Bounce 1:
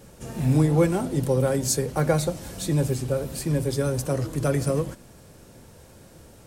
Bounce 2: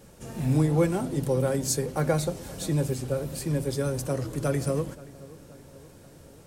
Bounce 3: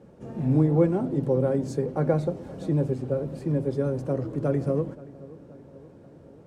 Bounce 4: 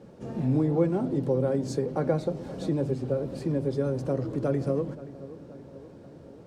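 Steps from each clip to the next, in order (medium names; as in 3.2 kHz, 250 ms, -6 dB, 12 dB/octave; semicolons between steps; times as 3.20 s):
hum notches 60/120 Hz; filtered feedback delay 527 ms, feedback 61%, level -19.5 dB; trim -3 dB
band-pass filter 300 Hz, Q 0.57; trim +3.5 dB
peaking EQ 4.5 kHz +5.5 dB 1.1 oct; hum notches 50/100/150 Hz; compression 1.5:1, threshold -30 dBFS, peak gain reduction 6 dB; trim +2 dB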